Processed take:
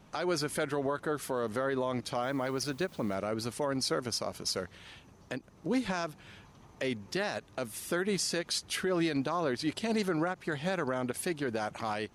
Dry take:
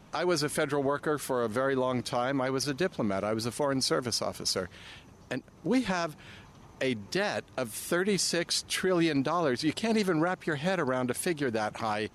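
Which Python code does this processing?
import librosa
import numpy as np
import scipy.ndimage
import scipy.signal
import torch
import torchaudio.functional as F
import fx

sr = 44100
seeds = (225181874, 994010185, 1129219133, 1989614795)

y = fx.dmg_noise_colour(x, sr, seeds[0], colour='white', level_db=-59.0, at=(2.22, 3.14), fade=0.02)
y = fx.end_taper(y, sr, db_per_s=520.0)
y = y * 10.0 ** (-3.5 / 20.0)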